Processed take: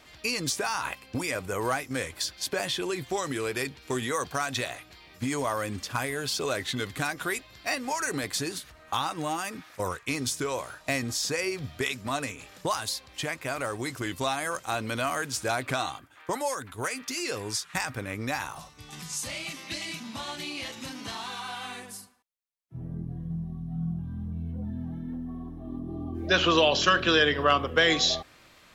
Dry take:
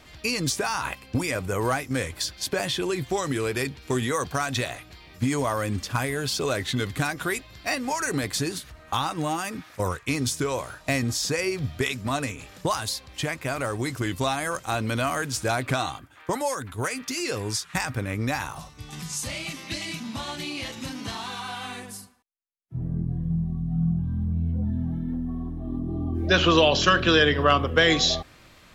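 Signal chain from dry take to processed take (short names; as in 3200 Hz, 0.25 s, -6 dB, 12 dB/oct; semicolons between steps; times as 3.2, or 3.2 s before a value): low shelf 210 Hz -8.5 dB; gain -2 dB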